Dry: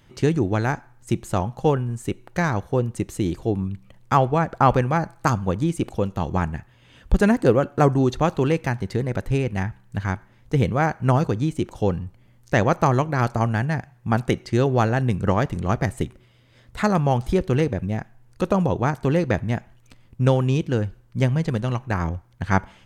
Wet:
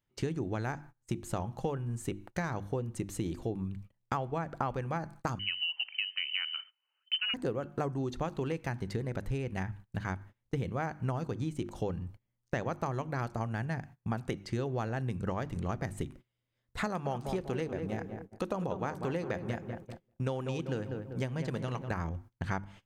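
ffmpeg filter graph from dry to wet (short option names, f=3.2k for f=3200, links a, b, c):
-filter_complex "[0:a]asettb=1/sr,asplit=3[a][b][c];[a]atrim=end=5.394[d];[b]atrim=start=5.39:end=7.34,asetpts=PTS-STARTPTS,afade=t=in:d=0.004:c=qsin,afade=t=out:st=1.946:d=0.004:c=qsin,lowpass=f=2.6k:t=q:w=0.5098,lowpass=f=2.6k:t=q:w=0.6013,lowpass=f=2.6k:t=q:w=0.9,lowpass=f=2.6k:t=q:w=2.563,afreqshift=-3100,highpass=870[e];[c]atrim=start=7.336[f];[d][e]acrossfade=d=0.004:c1=hsin:c2=qsin[g];[g][f]acrossfade=d=0.004:c1=qsin:c2=hsin,asettb=1/sr,asplit=3[h][i][j];[h]atrim=end=16.864[k];[i]atrim=start=16.86:end=21.91,asetpts=PTS-STARTPTS,afade=t=in:d=0.004:c=qsin,afade=t=out:st=5.046:d=0.004:c=qsin,lowshelf=f=140:g=-10,asplit=2[l][m];[m]adelay=195,lowpass=f=1.5k:p=1,volume=-9dB,asplit=2[n][o];[o]adelay=195,lowpass=f=1.5k:p=1,volume=0.5,asplit=2[p][q];[q]adelay=195,lowpass=f=1.5k:p=1,volume=0.5,asplit=2[r][s];[s]adelay=195,lowpass=f=1.5k:p=1,volume=0.5,asplit=2[t][u];[u]adelay=195,lowpass=f=1.5k:p=1,volume=0.5,asplit=2[v][w];[w]adelay=195,lowpass=f=1.5k:p=1,volume=0.5[x];[l][n][p][r][t][v][x]amix=inputs=7:normalize=0,atrim=end_sample=222705[y];[j]atrim=start=21.906[z];[k][y]acrossfade=d=0.004:c1=hsin:c2=qsin[aa];[aa][z]acrossfade=d=0.004:c1=qsin:c2=hsin,bandreject=f=50:t=h:w=6,bandreject=f=100:t=h:w=6,bandreject=f=150:t=h:w=6,bandreject=f=200:t=h:w=6,bandreject=f=250:t=h:w=6,bandreject=f=300:t=h:w=6,bandreject=f=350:t=h:w=6,agate=range=-24dB:threshold=-40dB:ratio=16:detection=peak,acompressor=threshold=-26dB:ratio=6,volume=-4.5dB"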